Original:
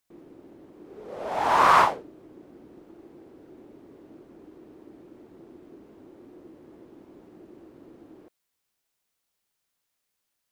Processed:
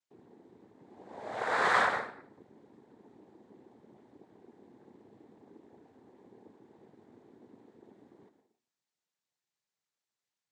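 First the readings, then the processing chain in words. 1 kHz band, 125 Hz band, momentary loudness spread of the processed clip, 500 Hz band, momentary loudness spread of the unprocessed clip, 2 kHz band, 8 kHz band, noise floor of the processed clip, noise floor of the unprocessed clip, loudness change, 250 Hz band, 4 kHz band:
-11.0 dB, -9.5 dB, 18 LU, -6.5 dB, 20 LU, -1.5 dB, -8.0 dB, under -85 dBFS, -80 dBFS, -9.0 dB, -8.5 dB, -6.5 dB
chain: plate-style reverb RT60 0.57 s, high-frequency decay 0.7×, pre-delay 100 ms, DRR 7.5 dB; noise-vocoded speech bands 6; trim -9 dB

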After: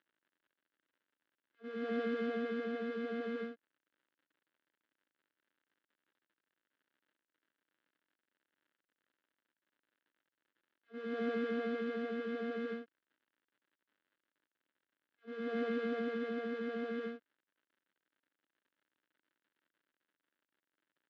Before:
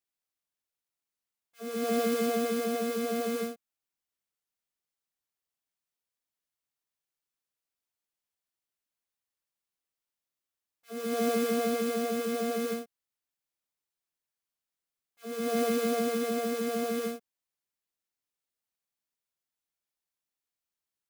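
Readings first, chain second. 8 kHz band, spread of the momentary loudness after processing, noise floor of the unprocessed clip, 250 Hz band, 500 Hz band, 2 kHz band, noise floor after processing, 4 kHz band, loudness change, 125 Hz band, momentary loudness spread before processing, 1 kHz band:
under -35 dB, 11 LU, under -85 dBFS, -7.0 dB, -8.5 dB, -4.0 dB, under -85 dBFS, -13.0 dB, -8.5 dB, no reading, 11 LU, -11.0 dB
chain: gate -39 dBFS, range -9 dB; crackle 110 per s -54 dBFS; cabinet simulation 240–3000 Hz, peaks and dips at 300 Hz +6 dB, 440 Hz -3 dB, 740 Hz -10 dB, 1.1 kHz -5 dB, 1.6 kHz +5 dB, 2.4 kHz -7 dB; trim -5 dB

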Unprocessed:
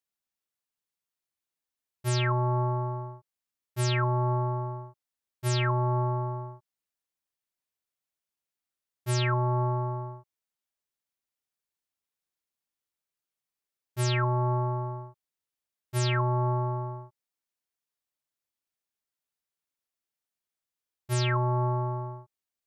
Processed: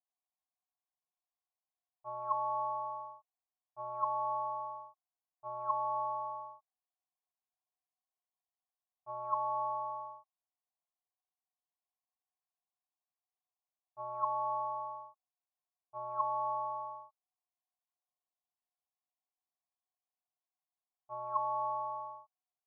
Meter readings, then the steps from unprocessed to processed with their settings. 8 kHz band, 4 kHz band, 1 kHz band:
under -35 dB, under -40 dB, -1.5 dB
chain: low-pass that closes with the level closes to 1.7 kHz; cascade formant filter a; high-order bell 800 Hz +15.5 dB; trim -8 dB

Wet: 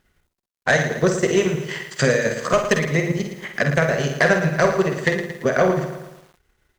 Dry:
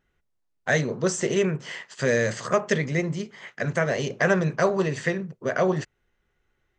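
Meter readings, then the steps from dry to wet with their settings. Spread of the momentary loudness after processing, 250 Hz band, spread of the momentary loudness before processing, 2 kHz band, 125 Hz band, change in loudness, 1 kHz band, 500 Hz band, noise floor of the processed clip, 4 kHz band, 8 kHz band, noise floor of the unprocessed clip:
9 LU, +4.5 dB, 10 LU, +6.0 dB, +4.5 dB, +5.0 dB, +5.5 dB, +5.0 dB, -77 dBFS, +6.5 dB, +3.5 dB, -74 dBFS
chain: de-hum 58.42 Hz, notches 18; transient shaper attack +8 dB, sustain -11 dB; in parallel at +0.5 dB: compression 6:1, threshold -27 dBFS, peak gain reduction 16.5 dB; on the sum: word length cut 12-bit, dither none; Chebyshev shaper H 5 -13 dB, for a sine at 1.5 dBFS; on a send: early reflections 49 ms -7.5 dB, 63 ms -12.5 dB; on the sum: bit-crushed delay 113 ms, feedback 55%, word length 6-bit, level -9.5 dB; trim -6.5 dB

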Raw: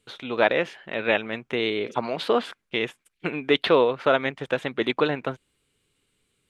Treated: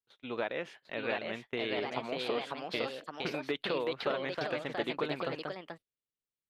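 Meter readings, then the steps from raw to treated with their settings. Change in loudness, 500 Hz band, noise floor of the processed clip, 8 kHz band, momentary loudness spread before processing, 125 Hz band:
-11.0 dB, -11.0 dB, under -85 dBFS, no reading, 11 LU, -9.5 dB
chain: gate -38 dBFS, range -25 dB; compression, threshold -22 dBFS, peak gain reduction 9 dB; ever faster or slower copies 760 ms, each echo +2 st, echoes 2; trim -8.5 dB

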